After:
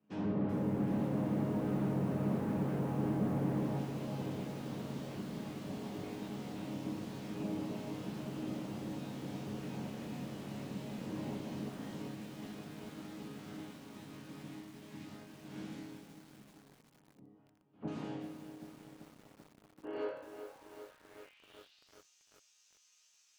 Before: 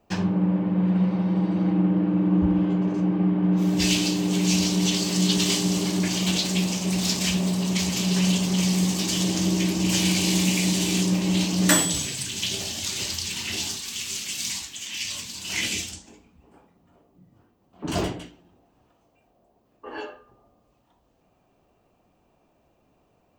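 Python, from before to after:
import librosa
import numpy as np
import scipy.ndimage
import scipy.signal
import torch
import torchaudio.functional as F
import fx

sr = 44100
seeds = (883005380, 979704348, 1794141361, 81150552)

p1 = fx.spec_clip(x, sr, under_db=24)
p2 = scipy.signal.sosfilt(scipy.signal.butter(4, 44.0, 'highpass', fs=sr, output='sos'), p1)
p3 = fx.peak_eq(p2, sr, hz=3200.0, db=3.0, octaves=0.92)
p4 = fx.resonator_bank(p3, sr, root=44, chord='sus4', decay_s=0.59)
p5 = fx.echo_wet_lowpass(p4, sr, ms=228, feedback_pct=61, hz=530.0, wet_db=-18.5)
p6 = fx.fold_sine(p5, sr, drive_db=18, ceiling_db=-22.0)
p7 = p5 + F.gain(torch.from_numpy(p6), -4.5).numpy()
p8 = fx.filter_sweep_bandpass(p7, sr, from_hz=210.0, to_hz=6200.0, start_s=19.54, end_s=22.04, q=3.3)
p9 = fx.echo_crushed(p8, sr, ms=386, feedback_pct=80, bits=10, wet_db=-9.0)
y = F.gain(torch.from_numpy(p9), 5.5).numpy()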